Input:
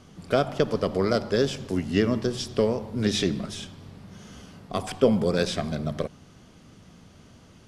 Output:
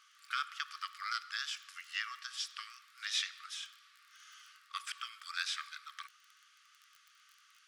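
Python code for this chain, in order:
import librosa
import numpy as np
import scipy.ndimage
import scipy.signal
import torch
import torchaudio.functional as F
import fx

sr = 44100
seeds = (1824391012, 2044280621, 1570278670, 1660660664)

y = fx.high_shelf(x, sr, hz=6700.0, db=-6.0)
y = fx.dmg_crackle(y, sr, seeds[0], per_s=26.0, level_db=-41.0)
y = fx.brickwall_highpass(y, sr, low_hz=1100.0)
y = F.gain(torch.from_numpy(y), -3.5).numpy()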